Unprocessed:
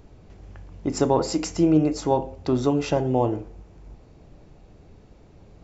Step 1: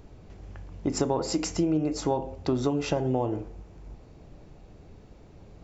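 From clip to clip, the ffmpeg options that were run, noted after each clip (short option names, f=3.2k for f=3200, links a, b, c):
-af "acompressor=threshold=-22dB:ratio=6"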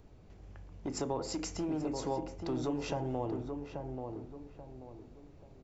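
-filter_complex "[0:a]acrossover=split=410|1600[a][b][c];[a]asoftclip=type=hard:threshold=-27.5dB[d];[d][b][c]amix=inputs=3:normalize=0,asplit=2[e][f];[f]adelay=834,lowpass=f=1.3k:p=1,volume=-5dB,asplit=2[g][h];[h]adelay=834,lowpass=f=1.3k:p=1,volume=0.37,asplit=2[i][j];[j]adelay=834,lowpass=f=1.3k:p=1,volume=0.37,asplit=2[k][l];[l]adelay=834,lowpass=f=1.3k:p=1,volume=0.37,asplit=2[m][n];[n]adelay=834,lowpass=f=1.3k:p=1,volume=0.37[o];[e][g][i][k][m][o]amix=inputs=6:normalize=0,volume=-8dB"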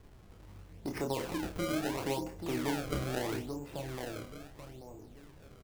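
-filter_complex "[0:a]acrusher=samples=28:mix=1:aa=0.000001:lfo=1:lforange=44.8:lforate=0.76,asplit=2[a][b];[b]adelay=29,volume=-6.5dB[c];[a][c]amix=inputs=2:normalize=0"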